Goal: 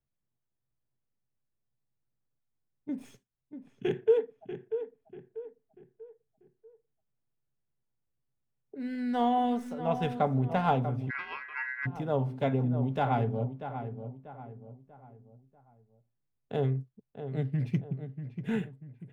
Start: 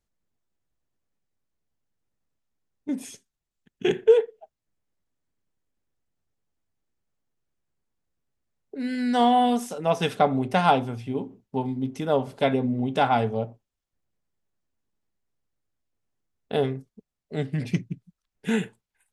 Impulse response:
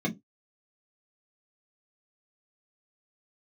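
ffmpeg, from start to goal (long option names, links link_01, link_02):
-filter_complex "[0:a]equalizer=frequency=130:width_type=o:width=0.39:gain=11,acrossover=split=430|4200[link_01][link_02][link_03];[link_03]aeval=exprs='max(val(0),0)':channel_layout=same[link_04];[link_01][link_02][link_04]amix=inputs=3:normalize=0,asplit=2[link_05][link_06];[link_06]adelay=640,lowpass=frequency=2000:poles=1,volume=-9.5dB,asplit=2[link_07][link_08];[link_08]adelay=640,lowpass=frequency=2000:poles=1,volume=0.41,asplit=2[link_09][link_10];[link_10]adelay=640,lowpass=frequency=2000:poles=1,volume=0.41,asplit=2[link_11][link_12];[link_12]adelay=640,lowpass=frequency=2000:poles=1,volume=0.41[link_13];[link_05][link_07][link_09][link_11][link_13]amix=inputs=5:normalize=0,asplit=3[link_14][link_15][link_16];[link_14]afade=type=out:start_time=11.09:duration=0.02[link_17];[link_15]aeval=exprs='val(0)*sin(2*PI*1800*n/s)':channel_layout=same,afade=type=in:start_time=11.09:duration=0.02,afade=type=out:start_time=11.85:duration=0.02[link_18];[link_16]afade=type=in:start_time=11.85:duration=0.02[link_19];[link_17][link_18][link_19]amix=inputs=3:normalize=0,highshelf=frequency=2500:gain=-8,volume=-7dB"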